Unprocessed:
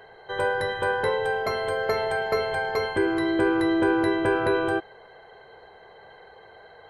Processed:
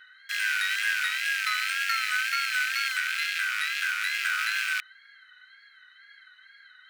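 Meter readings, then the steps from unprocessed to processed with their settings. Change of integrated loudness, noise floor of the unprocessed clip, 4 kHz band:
−1.5 dB, −50 dBFS, +7.0 dB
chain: loose part that buzzes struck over −43 dBFS, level −21 dBFS
in parallel at −7 dB: comparator with hysteresis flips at −34.5 dBFS
on the sum: Chebyshev high-pass with heavy ripple 1,300 Hz, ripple 3 dB
tape wow and flutter 79 cents
level +3.5 dB

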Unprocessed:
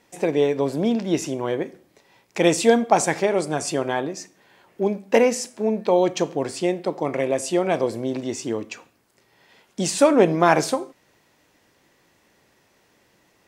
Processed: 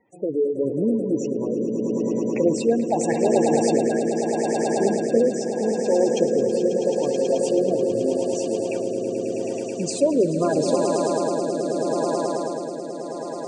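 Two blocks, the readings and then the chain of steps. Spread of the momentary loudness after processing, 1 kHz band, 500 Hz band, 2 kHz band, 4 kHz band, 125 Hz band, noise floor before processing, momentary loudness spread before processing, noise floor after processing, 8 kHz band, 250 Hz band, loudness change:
7 LU, −3.5 dB, +1.5 dB, −8.5 dB, −4.5 dB, −0.5 dB, −62 dBFS, 12 LU, −31 dBFS, −2.0 dB, +2.0 dB, −0.5 dB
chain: gate on every frequency bin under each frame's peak −10 dB strong
echo that builds up and dies away 108 ms, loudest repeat 8, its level −10 dB
rotating-speaker cabinet horn 0.8 Hz

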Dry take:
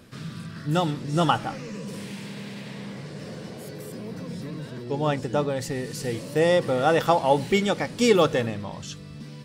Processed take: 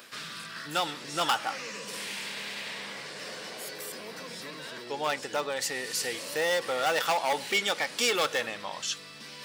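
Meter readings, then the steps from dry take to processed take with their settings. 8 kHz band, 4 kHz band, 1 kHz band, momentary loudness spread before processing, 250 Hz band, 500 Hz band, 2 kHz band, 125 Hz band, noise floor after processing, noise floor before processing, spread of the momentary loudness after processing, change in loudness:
+4.5 dB, +2.5 dB, −4.5 dB, 17 LU, −15.5 dB, −8.5 dB, +1.5 dB, −21.0 dB, −45 dBFS, −40 dBFS, 12 LU, −6.0 dB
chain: in parallel at +1 dB: downward compressor, threshold −29 dBFS, peak gain reduction 15 dB
on the sum: soft clipping −6 dBFS, distortion −25 dB
parametric band 13,000 Hz −12.5 dB 2.2 octaves
reversed playback
upward compression, threshold −31 dBFS
reversed playback
high-pass filter 880 Hz 6 dB per octave
gain into a clipping stage and back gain 21 dB
spectral tilt +3.5 dB per octave

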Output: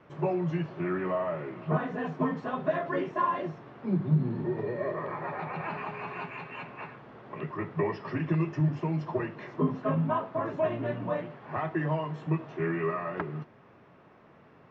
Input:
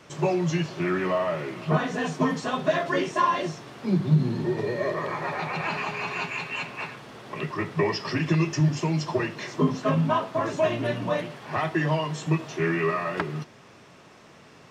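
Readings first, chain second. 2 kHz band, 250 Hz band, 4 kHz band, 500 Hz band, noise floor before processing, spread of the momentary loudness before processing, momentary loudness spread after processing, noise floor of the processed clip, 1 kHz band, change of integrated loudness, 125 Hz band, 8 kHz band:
−8.5 dB, −4.5 dB, −16.5 dB, −4.5 dB, −51 dBFS, 8 LU, 11 LU, −57 dBFS, −5.0 dB, −5.0 dB, −4.5 dB, below −25 dB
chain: low-pass filter 1,700 Hz 12 dB per octave
level −4.5 dB

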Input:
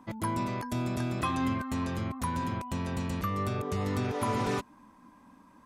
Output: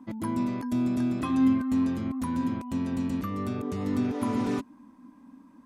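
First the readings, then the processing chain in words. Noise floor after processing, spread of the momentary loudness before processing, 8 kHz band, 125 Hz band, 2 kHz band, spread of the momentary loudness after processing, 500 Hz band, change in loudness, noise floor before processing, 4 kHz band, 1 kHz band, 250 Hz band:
−55 dBFS, 4 LU, can't be measured, −2.5 dB, −4.5 dB, 8 LU, −1.0 dB, +4.0 dB, −58 dBFS, −4.5 dB, −4.0 dB, +8.0 dB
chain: parametric band 260 Hz +14.5 dB 0.7 octaves
level −4.5 dB

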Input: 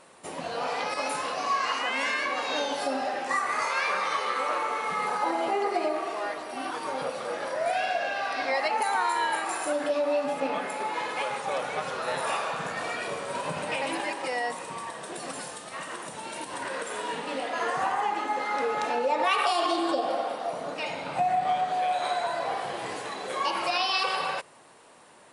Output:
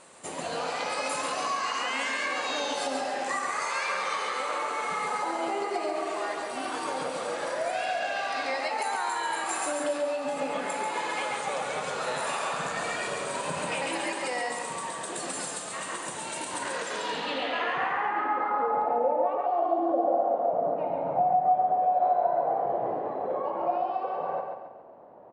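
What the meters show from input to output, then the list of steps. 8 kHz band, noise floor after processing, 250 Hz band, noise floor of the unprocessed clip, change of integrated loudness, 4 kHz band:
+4.0 dB, −37 dBFS, −0.5 dB, −42 dBFS, 0.0 dB, −2.5 dB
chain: notch filter 5,500 Hz, Q 15
downward compressor, threshold −28 dBFS, peak gain reduction 8 dB
low-pass filter sweep 8,100 Hz → 680 Hz, 0:16.59–0:18.98
repeating echo 138 ms, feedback 43%, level −5 dB

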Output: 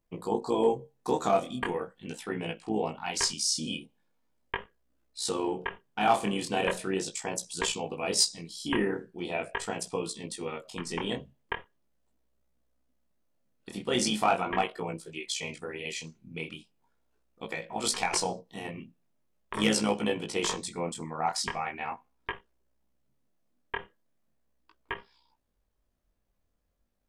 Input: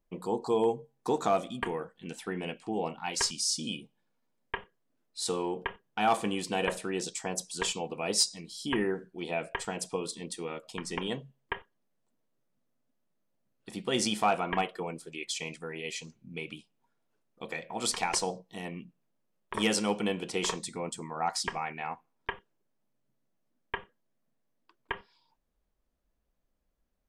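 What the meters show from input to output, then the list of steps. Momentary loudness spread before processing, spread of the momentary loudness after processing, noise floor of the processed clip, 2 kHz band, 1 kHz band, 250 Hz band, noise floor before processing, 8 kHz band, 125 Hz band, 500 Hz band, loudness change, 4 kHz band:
13 LU, 14 LU, −75 dBFS, +1.5 dB, +1.5 dB, +2.0 dB, −77 dBFS, +1.0 dB, +1.5 dB, +1.5 dB, +1.5 dB, +1.5 dB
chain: amplitude modulation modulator 63 Hz, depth 40%
chorus effect 0.4 Hz, delay 18 ms, depth 7.1 ms
every ending faded ahead of time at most 350 dB per second
level +7 dB

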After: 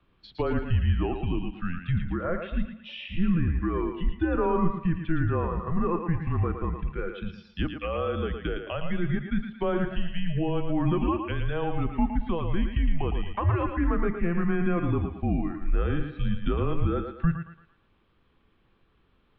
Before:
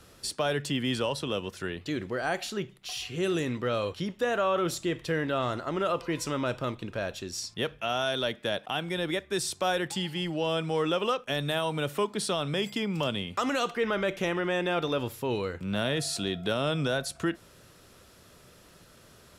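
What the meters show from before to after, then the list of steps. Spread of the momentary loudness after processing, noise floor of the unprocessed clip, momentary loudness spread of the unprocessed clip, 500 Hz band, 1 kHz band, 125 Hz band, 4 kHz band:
7 LU, −56 dBFS, 6 LU, −2.0 dB, −1.0 dB, +8.0 dB, −12.0 dB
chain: treble cut that deepens with the level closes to 1,700 Hz, closed at −27 dBFS
single-sideband voice off tune −170 Hz 160–3,600 Hz
noise reduction from a noise print of the clip's start 13 dB
low-shelf EQ 160 Hz +12 dB
hum removal 73.78 Hz, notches 4
on a send: feedback echo with a high-pass in the loop 113 ms, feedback 40%, high-pass 270 Hz, level −6 dB

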